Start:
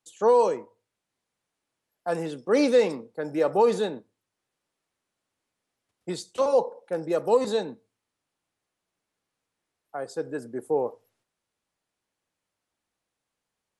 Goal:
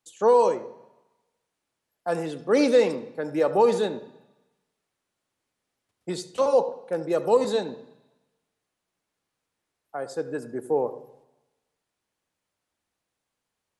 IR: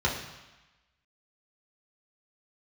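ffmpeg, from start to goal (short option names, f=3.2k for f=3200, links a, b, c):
-filter_complex "[0:a]asplit=2[a][b];[1:a]atrim=start_sample=2205,adelay=73[c];[b][c]afir=irnorm=-1:irlink=0,volume=-25.5dB[d];[a][d]amix=inputs=2:normalize=0,volume=1dB"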